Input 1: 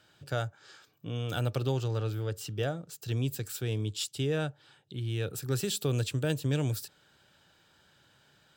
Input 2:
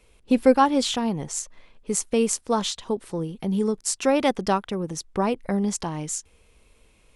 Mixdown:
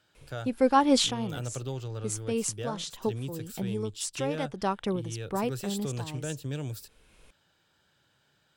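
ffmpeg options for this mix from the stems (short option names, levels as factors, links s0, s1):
-filter_complex "[0:a]volume=0.531,asplit=2[s0][s1];[1:a]adelay=150,volume=1.26[s2];[s1]apad=whole_len=322145[s3];[s2][s3]sidechaincompress=threshold=0.00562:ratio=6:attack=8.3:release=552[s4];[s0][s4]amix=inputs=2:normalize=0"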